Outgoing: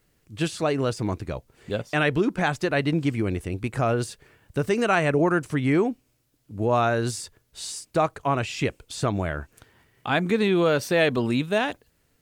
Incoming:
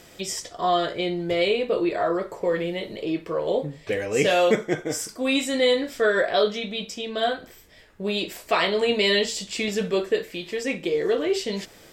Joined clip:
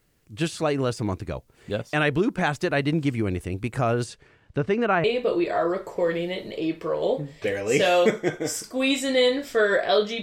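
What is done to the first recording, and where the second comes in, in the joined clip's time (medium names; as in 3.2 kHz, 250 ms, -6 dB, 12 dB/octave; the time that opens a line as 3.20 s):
outgoing
4.03–5.04 s: low-pass 9.3 kHz -> 1.7 kHz
5.04 s: go over to incoming from 1.49 s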